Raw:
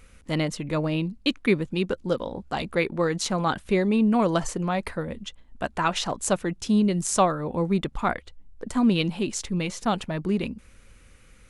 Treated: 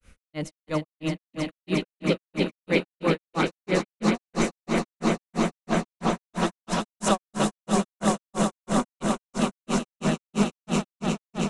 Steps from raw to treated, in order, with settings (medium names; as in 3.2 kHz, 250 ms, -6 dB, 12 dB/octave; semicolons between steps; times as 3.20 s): echo with a slow build-up 119 ms, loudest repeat 8, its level -7 dB; granulator 183 ms, grains 3 per s, pitch spread up and down by 0 st